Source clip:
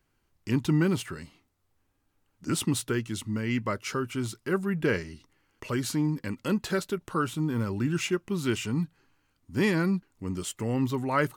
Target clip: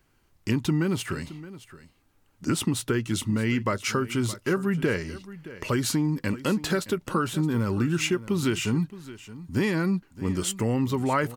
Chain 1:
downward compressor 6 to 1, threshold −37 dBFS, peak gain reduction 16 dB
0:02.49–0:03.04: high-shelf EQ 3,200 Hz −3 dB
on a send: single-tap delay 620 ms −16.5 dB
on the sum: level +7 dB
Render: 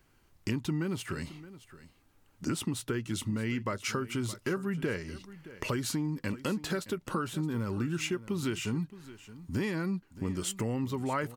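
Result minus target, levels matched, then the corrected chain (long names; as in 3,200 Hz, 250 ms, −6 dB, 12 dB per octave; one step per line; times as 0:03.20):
downward compressor: peak gain reduction +7.5 dB
downward compressor 6 to 1, threshold −28 dBFS, peak gain reduction 8.5 dB
0:02.49–0:03.04: high-shelf EQ 3,200 Hz −3 dB
on a send: single-tap delay 620 ms −16.5 dB
on the sum: level +7 dB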